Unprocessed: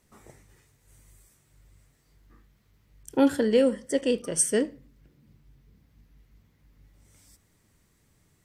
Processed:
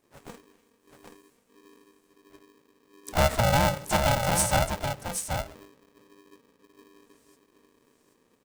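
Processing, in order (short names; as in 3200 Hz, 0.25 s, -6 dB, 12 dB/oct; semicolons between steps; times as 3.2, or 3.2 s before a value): gate -52 dBFS, range -11 dB; in parallel at +1 dB: limiter -17.5 dBFS, peak gain reduction 7 dB; on the sum: compressor 2:1, threshold -22 dBFS, peak gain reduction 6 dB; harmoniser -5 st -11 dB, -3 st -15 dB, +4 st -9 dB; low shelf 240 Hz +7.5 dB; echo 0.778 s -6.5 dB; polarity switched at an audio rate 350 Hz; gain -4 dB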